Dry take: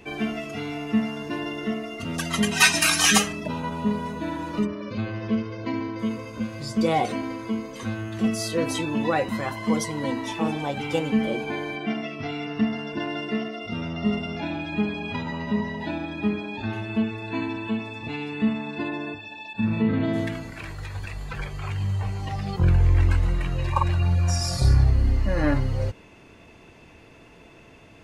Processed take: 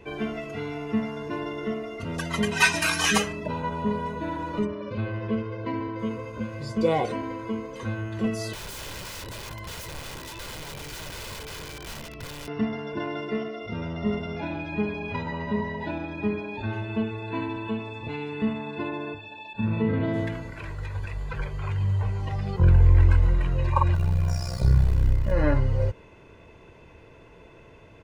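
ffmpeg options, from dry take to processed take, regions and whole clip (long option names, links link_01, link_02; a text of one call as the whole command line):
ffmpeg -i in.wav -filter_complex "[0:a]asettb=1/sr,asplit=3[link_01][link_02][link_03];[link_01]atrim=end=8.534[link_04];[link_02]atrim=start=8.53:end=12.48,asetpts=PTS-STARTPTS,afade=type=in:duration=0.004:curve=qsin,afade=type=out:start_time=3.946:duration=0.004:curve=qsin,aeval=exprs='val(0)+0.00501*(sin(2*PI*60*n/s)+sin(2*PI*2*60*n/s)/2+sin(2*PI*3*60*n/s)/3+sin(2*PI*4*60*n/s)/4+sin(2*PI*5*60*n/s)/5)':channel_layout=same,aeval=exprs='(mod(18.8*val(0)+1,2)-1)/18.8':channel_layout=same,acrossover=split=150|3000[link_05][link_06][link_07];[link_06]acompressor=threshold=-41dB:ratio=3:attack=3.2:release=140:knee=2.83:detection=peak[link_08];[link_05][link_08][link_07]amix=inputs=3:normalize=0[link_09];[link_03]atrim=start=12.476[link_10];[link_04][link_09]acrossfade=duration=0.004:curve1=hsin:curve2=qsin[link_11];[link_11][link_10]acrossfade=duration=0.004:curve1=qsin:curve2=hsin,asettb=1/sr,asplit=3[link_12][link_13][link_14];[link_12]atrim=end=23.954[link_15];[link_13]atrim=start=23.95:end=25.32,asetpts=PTS-STARTPTS,afade=type=in:duration=0.004:curve=qsin,afade=type=out:start_time=1.366:duration=0.004:curve=qsin,acrusher=bits=7:dc=4:mix=0:aa=0.000001,tremolo=f=63:d=0.824[link_16];[link_14]atrim=start=25.316[link_17];[link_15][link_16]acrossfade=duration=0.004:curve1=hsin:curve2=qsin[link_18];[link_18][link_17]acrossfade=duration=0.004:curve1=qsin:curve2=hsin,highshelf=frequency=2800:gain=-10,aecho=1:1:2:0.41" out.wav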